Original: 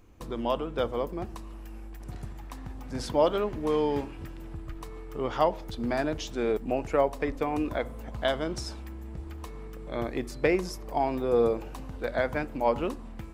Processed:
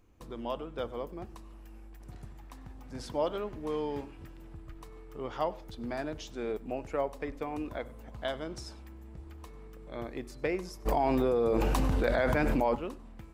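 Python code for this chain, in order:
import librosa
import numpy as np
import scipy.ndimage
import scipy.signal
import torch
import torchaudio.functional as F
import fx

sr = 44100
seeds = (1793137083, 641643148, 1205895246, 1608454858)

p1 = x + fx.echo_single(x, sr, ms=98, db=-22.5, dry=0)
p2 = fx.env_flatten(p1, sr, amount_pct=100, at=(10.85, 12.74), fade=0.02)
y = p2 * librosa.db_to_amplitude(-7.5)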